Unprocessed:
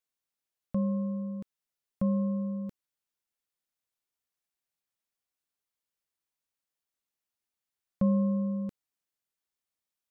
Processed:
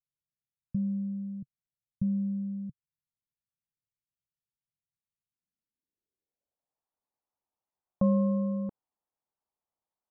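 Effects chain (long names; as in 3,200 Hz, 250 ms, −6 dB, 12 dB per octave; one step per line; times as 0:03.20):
low-pass filter sweep 140 Hz → 880 Hz, 0:05.17–0:06.79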